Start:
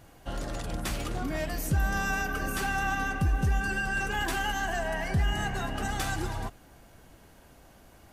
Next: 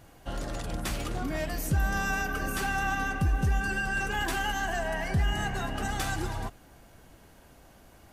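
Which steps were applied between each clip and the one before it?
no audible change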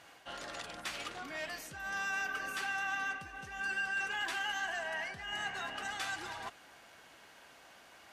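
reverse; compression 4:1, threshold -36 dBFS, peak gain reduction 12 dB; reverse; band-pass filter 2.5 kHz, Q 0.63; trim +5.5 dB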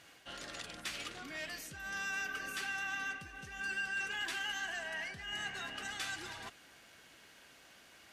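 peaking EQ 850 Hz -8.5 dB 1.5 oct; trim +1 dB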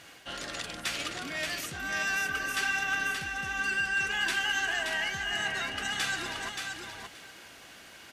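feedback delay 577 ms, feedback 15%, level -5 dB; trim +8 dB

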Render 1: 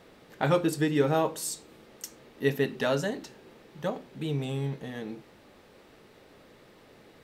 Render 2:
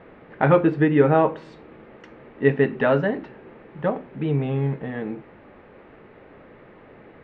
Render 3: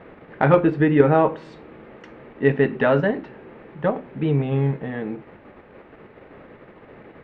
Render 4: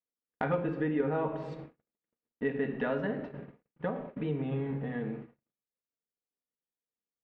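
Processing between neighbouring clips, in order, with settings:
low-pass 2.3 kHz 24 dB/octave; trim +8 dB
in parallel at -1 dB: level held to a coarse grid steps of 12 dB; on the sum: Chebyshev shaper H 6 -38 dB, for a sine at 1 dBFS; trim -2 dB
simulated room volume 3700 m³, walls furnished, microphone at 1.8 m; compression 2:1, threshold -30 dBFS, peak gain reduction 12.5 dB; gate -34 dBFS, range -56 dB; trim -5.5 dB

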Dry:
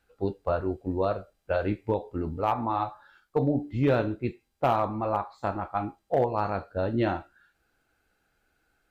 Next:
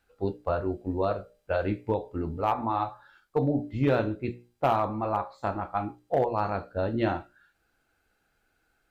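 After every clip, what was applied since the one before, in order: hum notches 60/120/180/240/300/360/420/480/540/600 Hz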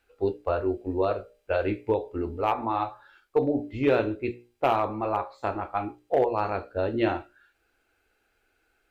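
fifteen-band graphic EQ 160 Hz -11 dB, 400 Hz +6 dB, 2.5 kHz +6 dB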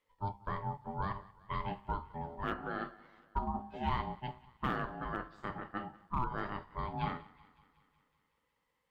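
thinning echo 186 ms, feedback 67%, high-pass 250 Hz, level -21 dB; ring modulator 500 Hz; trim -8.5 dB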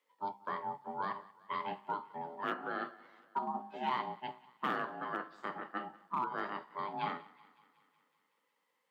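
Bessel high-pass 300 Hz, order 8; trim +1.5 dB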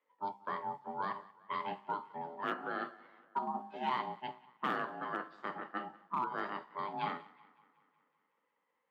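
level-controlled noise filter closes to 2 kHz, open at -33.5 dBFS

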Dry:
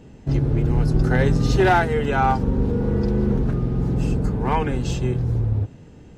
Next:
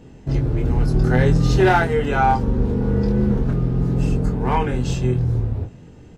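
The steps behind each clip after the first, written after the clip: doubling 24 ms -5.5 dB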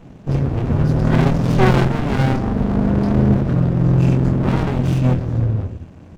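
reverberation RT60 0.85 s, pre-delay 3 ms, DRR 11 dB; sliding maximum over 65 samples; trim -1 dB

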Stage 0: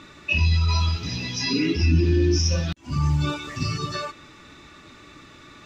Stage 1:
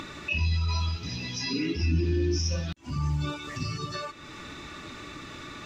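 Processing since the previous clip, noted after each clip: upward compressor, threshold -23 dBFS; trim -6.5 dB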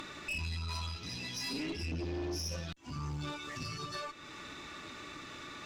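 bass shelf 230 Hz -7.5 dB; valve stage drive 31 dB, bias 0.45; trim -2 dB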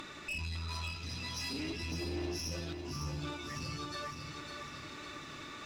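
bit-crushed delay 555 ms, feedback 55%, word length 12-bit, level -6 dB; trim -1.5 dB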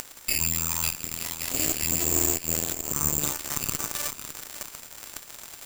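careless resampling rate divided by 6×, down filtered, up zero stuff; Chebyshev shaper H 4 -12 dB, 7 -15 dB, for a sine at -13 dBFS; trim +5 dB

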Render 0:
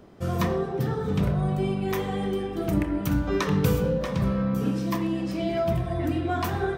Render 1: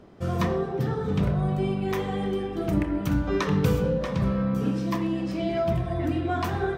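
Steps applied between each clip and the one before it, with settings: treble shelf 9.6 kHz -10.5 dB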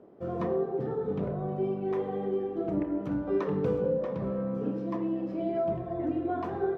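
band-pass filter 450 Hz, Q 1.2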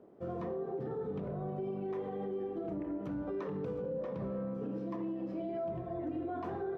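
peak limiter -26.5 dBFS, peak gain reduction 8.5 dB; trim -4 dB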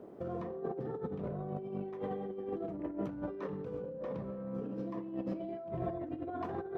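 compressor with a negative ratio -41 dBFS, ratio -0.5; trim +3 dB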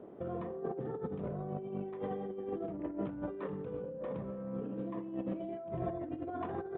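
resampled via 8 kHz

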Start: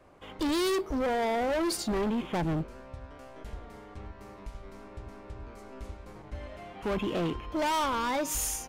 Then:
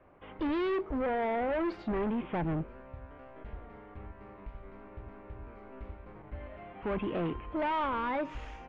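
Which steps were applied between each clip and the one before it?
low-pass 2.6 kHz 24 dB/octave; trim -2.5 dB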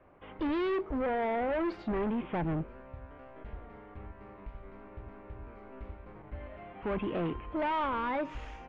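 no audible change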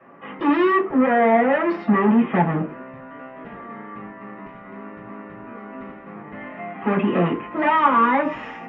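reverberation RT60 0.30 s, pre-delay 3 ms, DRR -3 dB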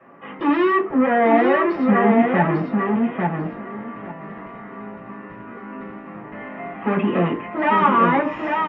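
feedback delay 847 ms, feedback 18%, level -3.5 dB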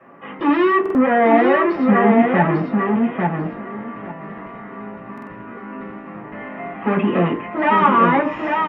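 buffer glitch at 0.81/5.13 s, samples 2048, times 2; trim +2 dB

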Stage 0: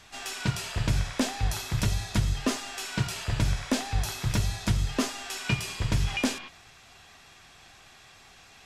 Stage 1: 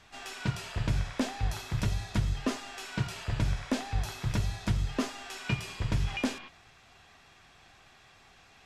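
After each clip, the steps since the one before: treble shelf 4.5 kHz -8.5 dB; trim -3 dB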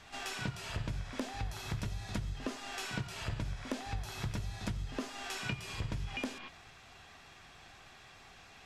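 pre-echo 66 ms -18 dB; compression 10:1, threshold -36 dBFS, peak gain reduction 13.5 dB; trim +2 dB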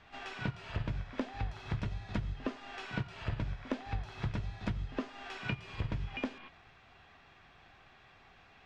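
low-pass 3.1 kHz 12 dB/octave; upward expansion 1.5:1, over -45 dBFS; trim +3 dB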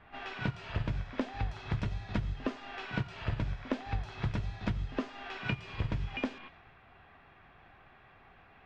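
level-controlled noise filter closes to 2 kHz, open at -32 dBFS; trim +2.5 dB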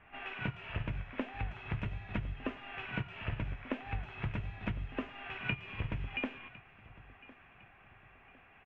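resonant high shelf 3.5 kHz -9.5 dB, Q 3; feedback delay 1056 ms, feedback 41%, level -20 dB; trim -4 dB

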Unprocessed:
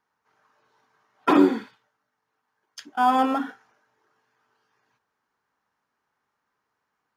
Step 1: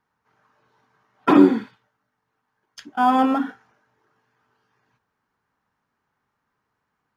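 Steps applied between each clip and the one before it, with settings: tone controls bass +9 dB, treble -4 dB; trim +1.5 dB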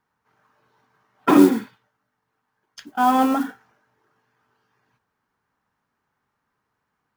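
modulation noise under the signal 23 dB

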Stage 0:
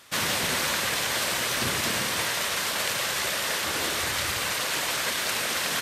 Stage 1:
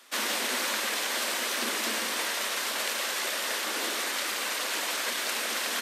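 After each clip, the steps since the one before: steep high-pass 210 Hz 96 dB/octave; trim -3 dB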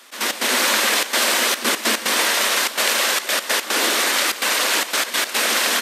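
level rider gain up to 3.5 dB; trance gate "x.x.xxxxxx.xxxx." 146 bpm -12 dB; trim +8.5 dB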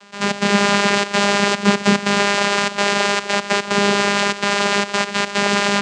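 vocoder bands 8, saw 202 Hz; trim +3.5 dB

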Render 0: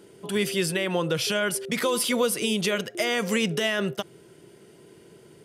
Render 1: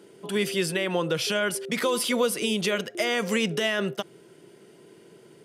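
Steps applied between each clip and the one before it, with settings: high-pass 150 Hz; treble shelf 7.5 kHz -4 dB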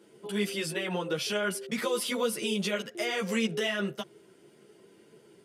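three-phase chorus; trim -2 dB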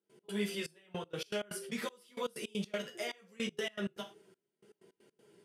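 gated-style reverb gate 130 ms falling, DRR 3.5 dB; trance gate ".x.xxxx...x.x" 159 bpm -24 dB; trim -7.5 dB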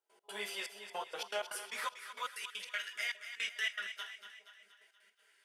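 two-band feedback delay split 650 Hz, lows 409 ms, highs 237 ms, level -10 dB; high-pass sweep 790 Hz -> 1.7 kHz, 1.31–2.71 s

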